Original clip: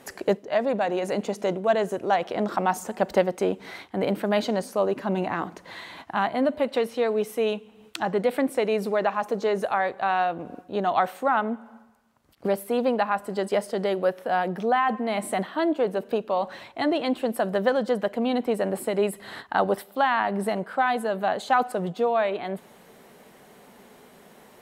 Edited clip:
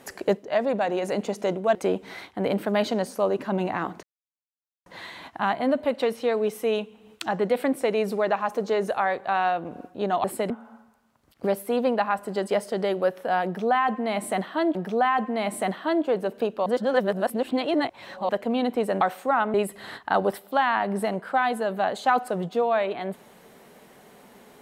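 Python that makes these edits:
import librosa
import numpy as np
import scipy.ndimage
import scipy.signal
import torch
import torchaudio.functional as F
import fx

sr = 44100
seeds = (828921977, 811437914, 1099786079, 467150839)

y = fx.edit(x, sr, fx.cut(start_s=1.75, length_s=1.57),
    fx.insert_silence(at_s=5.6, length_s=0.83),
    fx.swap(start_s=10.98, length_s=0.53, other_s=18.72, other_length_s=0.26),
    fx.repeat(start_s=14.46, length_s=1.3, count=2),
    fx.reverse_span(start_s=16.37, length_s=1.63), tone=tone)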